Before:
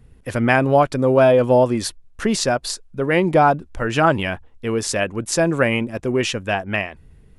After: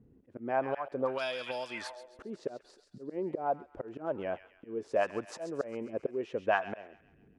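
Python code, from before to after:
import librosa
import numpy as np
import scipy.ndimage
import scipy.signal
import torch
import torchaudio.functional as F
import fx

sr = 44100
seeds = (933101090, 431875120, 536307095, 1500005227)

y = fx.auto_swell(x, sr, attack_ms=493.0)
y = fx.echo_wet_highpass(y, sr, ms=135, feedback_pct=56, hz=1700.0, wet_db=-7.0)
y = fx.auto_wah(y, sr, base_hz=270.0, top_hz=4600.0, q=2.0, full_db=-11.5, direction='up')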